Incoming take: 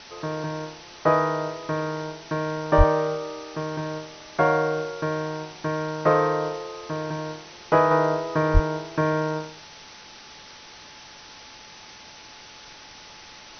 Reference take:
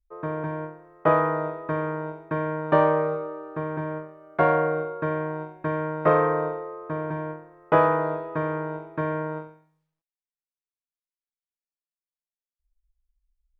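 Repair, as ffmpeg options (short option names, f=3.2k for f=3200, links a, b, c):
-filter_complex "[0:a]bandreject=f=860:w=30,asplit=3[a][b][c];[a]afade=t=out:st=2.77:d=0.02[d];[b]highpass=f=140:w=0.5412,highpass=f=140:w=1.3066,afade=t=in:st=2.77:d=0.02,afade=t=out:st=2.89:d=0.02[e];[c]afade=t=in:st=2.89:d=0.02[f];[d][e][f]amix=inputs=3:normalize=0,asplit=3[g][h][i];[g]afade=t=out:st=8.53:d=0.02[j];[h]highpass=f=140:w=0.5412,highpass=f=140:w=1.3066,afade=t=in:st=8.53:d=0.02,afade=t=out:st=8.65:d=0.02[k];[i]afade=t=in:st=8.65:d=0.02[l];[j][k][l]amix=inputs=3:normalize=0,afwtdn=0.01,asetnsamples=n=441:p=0,asendcmd='7.91 volume volume -4.5dB',volume=0dB"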